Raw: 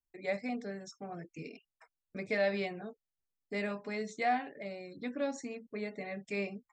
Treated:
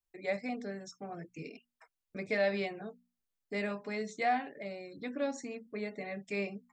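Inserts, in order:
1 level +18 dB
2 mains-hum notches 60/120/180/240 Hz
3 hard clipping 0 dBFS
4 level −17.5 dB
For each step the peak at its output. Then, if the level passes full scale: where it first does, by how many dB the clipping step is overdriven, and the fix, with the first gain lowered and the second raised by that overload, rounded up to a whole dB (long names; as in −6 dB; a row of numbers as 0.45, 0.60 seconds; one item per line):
−2.5, −2.5, −2.5, −20.0 dBFS
no step passes full scale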